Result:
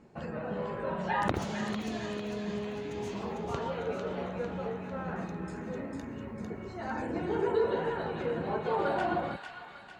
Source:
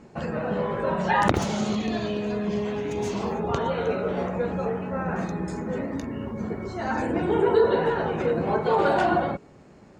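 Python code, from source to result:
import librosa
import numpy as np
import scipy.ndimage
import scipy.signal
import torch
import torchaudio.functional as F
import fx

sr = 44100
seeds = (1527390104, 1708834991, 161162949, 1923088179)

y = fx.peak_eq(x, sr, hz=6300.0, db=-3.5, octaves=0.85)
y = fx.echo_wet_highpass(y, sr, ms=450, feedback_pct=50, hz=1700.0, wet_db=-3.5)
y = y * librosa.db_to_amplitude(-8.5)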